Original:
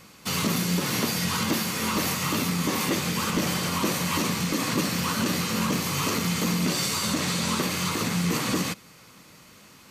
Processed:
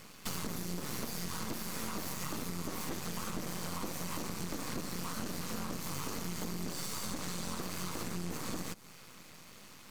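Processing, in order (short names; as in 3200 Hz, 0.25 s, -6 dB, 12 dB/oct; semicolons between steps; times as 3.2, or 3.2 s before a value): half-wave rectifier; dynamic EQ 2800 Hz, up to -6 dB, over -47 dBFS, Q 0.97; compressor 10:1, threshold -34 dBFS, peak gain reduction 12.5 dB; gain +1 dB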